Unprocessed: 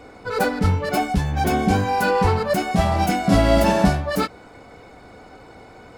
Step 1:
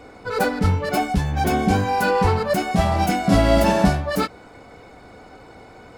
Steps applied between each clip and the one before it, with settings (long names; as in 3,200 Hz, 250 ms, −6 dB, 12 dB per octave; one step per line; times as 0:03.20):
no processing that can be heard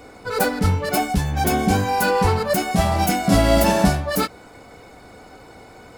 high-shelf EQ 7,000 Hz +11.5 dB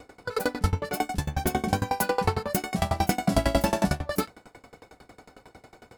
tremolo with a ramp in dB decaying 11 Hz, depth 25 dB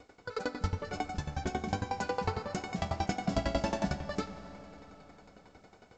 convolution reverb RT60 4.1 s, pre-delay 5 ms, DRR 11 dB
level −8 dB
A-law companding 128 kbit/s 16,000 Hz